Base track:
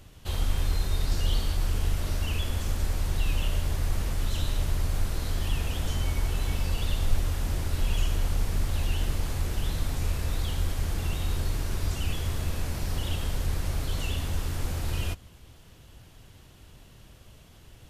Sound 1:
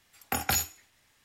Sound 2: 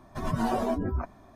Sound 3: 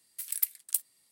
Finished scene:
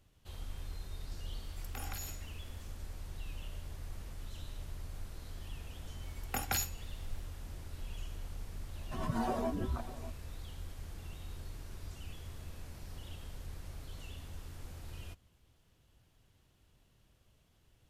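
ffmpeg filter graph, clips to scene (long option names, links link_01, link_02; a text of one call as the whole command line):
ffmpeg -i bed.wav -i cue0.wav -i cue1.wav -filter_complex "[1:a]asplit=2[link_01][link_02];[0:a]volume=-17dB[link_03];[link_01]acompressor=threshold=-39dB:ratio=16:attack=0.68:release=42:knee=1:detection=peak[link_04];[link_02]acompressor=mode=upward:threshold=-48dB:ratio=2.5:attack=3.2:release=140:knee=2.83:detection=peak[link_05];[2:a]aecho=1:1:597:0.168[link_06];[link_04]atrim=end=1.24,asetpts=PTS-STARTPTS,volume=-0.5dB,afade=type=in:duration=0.004:curve=hsin,afade=type=out:start_time=1.236:duration=0.004:curve=hsin,adelay=1430[link_07];[link_05]atrim=end=1.24,asetpts=PTS-STARTPTS,volume=-7dB,afade=type=in:duration=0.004:curve=hsin,afade=type=out:start_time=1.236:duration=0.004:curve=hsin,adelay=6020[link_08];[link_06]atrim=end=1.35,asetpts=PTS-STARTPTS,volume=-7dB,afade=type=in:duration=0.004:curve=hsin,afade=type=out:start_time=1.346:duration=0.004:curve=hsin,adelay=8760[link_09];[link_03][link_07][link_08][link_09]amix=inputs=4:normalize=0" out.wav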